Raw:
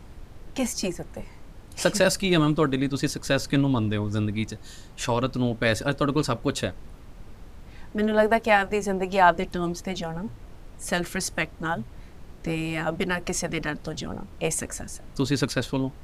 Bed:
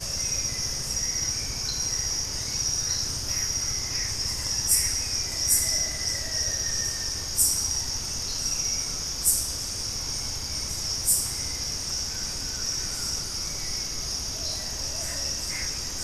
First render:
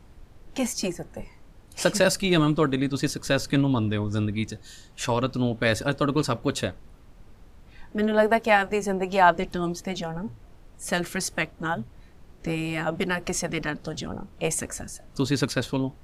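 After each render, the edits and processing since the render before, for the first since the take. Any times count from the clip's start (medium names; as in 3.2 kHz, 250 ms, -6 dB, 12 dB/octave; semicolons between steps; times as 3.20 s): noise print and reduce 6 dB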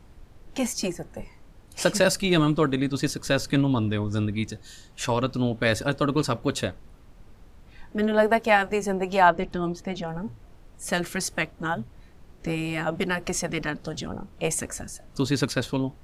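9.28–10.08 s: low-pass 2.8 kHz 6 dB/octave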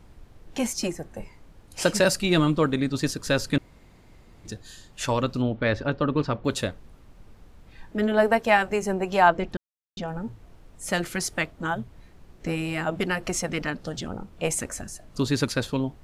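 3.58–4.45 s: room tone; 5.42–6.45 s: distance through air 240 m; 9.57–9.97 s: mute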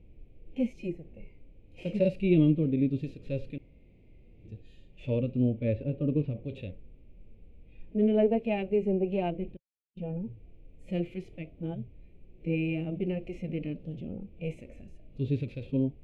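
harmonic-percussive split percussive -16 dB; FFT filter 530 Hz 0 dB, 1 kHz -23 dB, 1.6 kHz -27 dB, 2.4 kHz 0 dB, 4.9 kHz -25 dB, 7.9 kHz -29 dB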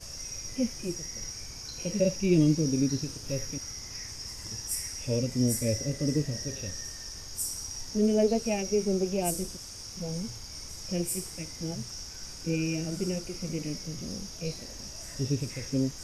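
add bed -11.5 dB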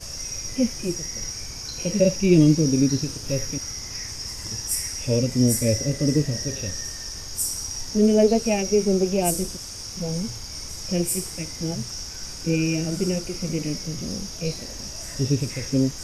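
trim +7 dB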